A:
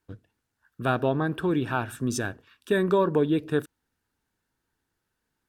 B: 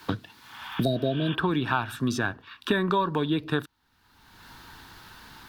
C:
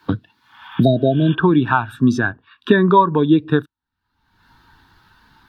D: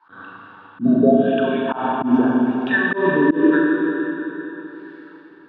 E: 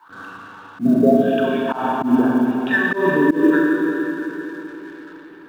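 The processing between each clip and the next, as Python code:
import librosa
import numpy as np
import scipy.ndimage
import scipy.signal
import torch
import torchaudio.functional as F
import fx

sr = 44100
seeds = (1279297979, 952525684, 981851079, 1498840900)

y1 = fx.graphic_eq(x, sr, hz=(500, 1000, 4000, 8000), db=(-7, 8, 9, -7))
y1 = fx.spec_repair(y1, sr, seeds[0], start_s=0.41, length_s=0.91, low_hz=720.0, high_hz=3700.0, source='both')
y1 = fx.band_squash(y1, sr, depth_pct=100)
y2 = fx.spectral_expand(y1, sr, expansion=1.5)
y2 = y2 * 10.0 ** (8.5 / 20.0)
y3 = fx.wah_lfo(y2, sr, hz=0.87, low_hz=250.0, high_hz=2600.0, q=3.5)
y3 = fx.rev_schroeder(y3, sr, rt60_s=3.7, comb_ms=29, drr_db=-3.5)
y3 = fx.auto_swell(y3, sr, attack_ms=133.0)
y3 = y3 * 10.0 ** (3.5 / 20.0)
y4 = fx.law_mismatch(y3, sr, coded='mu')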